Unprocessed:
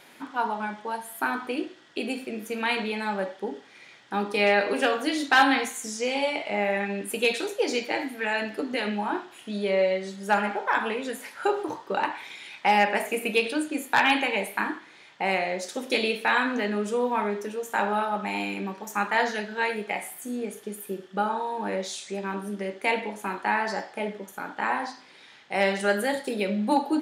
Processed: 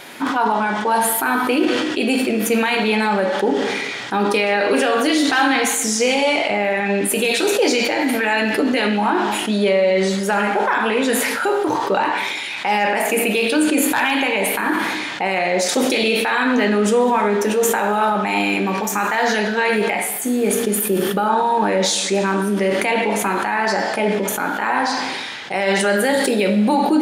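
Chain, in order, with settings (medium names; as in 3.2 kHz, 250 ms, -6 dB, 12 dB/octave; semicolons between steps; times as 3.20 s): in parallel at +2 dB: compression, threshold -31 dBFS, peak gain reduction 16 dB; on the sum: peak limiter -16.5 dBFS, peak gain reduction 11 dB; gated-style reverb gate 470 ms falling, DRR 11 dB; decay stretcher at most 24 dB/s; trim +7.5 dB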